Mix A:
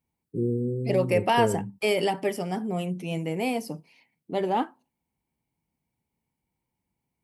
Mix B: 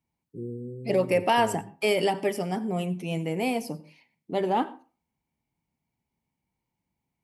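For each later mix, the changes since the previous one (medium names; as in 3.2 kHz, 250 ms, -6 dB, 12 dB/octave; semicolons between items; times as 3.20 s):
first voice -9.5 dB; reverb: on, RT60 0.35 s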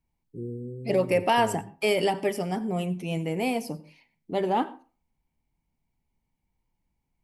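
master: remove high-pass 96 Hz 12 dB/octave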